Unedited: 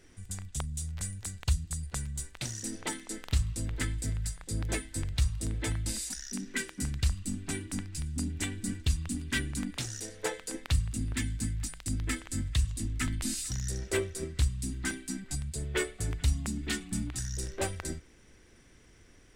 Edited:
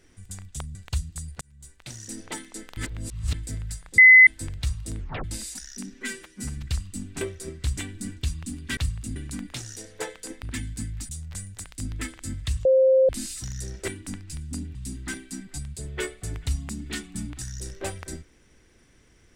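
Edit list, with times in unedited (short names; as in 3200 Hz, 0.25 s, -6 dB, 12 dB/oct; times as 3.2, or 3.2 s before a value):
0.75–1.3 move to 11.72
1.96–2.69 fade in
3.32–3.89 reverse
4.53–4.82 bleep 2030 Hz -7.5 dBFS
5.53 tape stop 0.26 s
6.49–6.95 stretch 1.5×
7.53–8.4 swap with 13.96–14.52
10.67–11.06 move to 9.4
12.73–13.17 bleep 526 Hz -14 dBFS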